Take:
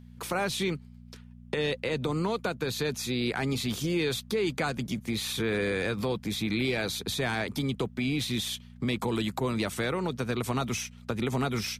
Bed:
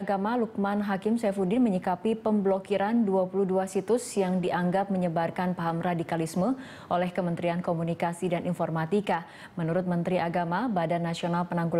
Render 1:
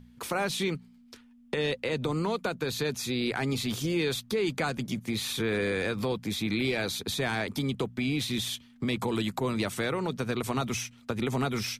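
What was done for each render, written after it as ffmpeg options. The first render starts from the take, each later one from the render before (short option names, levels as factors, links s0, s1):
-af "bandreject=f=60:t=h:w=4,bandreject=f=120:t=h:w=4,bandreject=f=180:t=h:w=4"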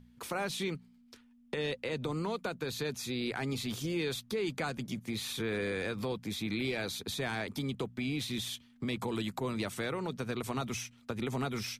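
-af "volume=0.531"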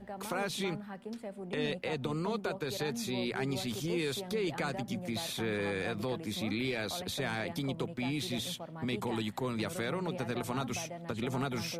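-filter_complex "[1:a]volume=0.158[s0];[0:a][s0]amix=inputs=2:normalize=0"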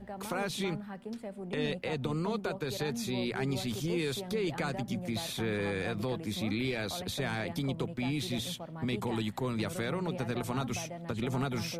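-af "lowshelf=f=140:g=6.5"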